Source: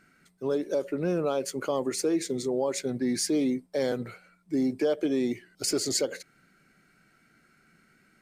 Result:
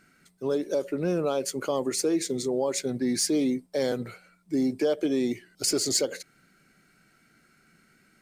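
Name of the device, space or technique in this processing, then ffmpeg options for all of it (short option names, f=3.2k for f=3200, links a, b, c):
exciter from parts: -filter_complex "[0:a]asplit=2[a][b];[b]highpass=2.6k,asoftclip=type=tanh:threshold=-25.5dB,volume=-6.5dB[c];[a][c]amix=inputs=2:normalize=0,volume=1dB"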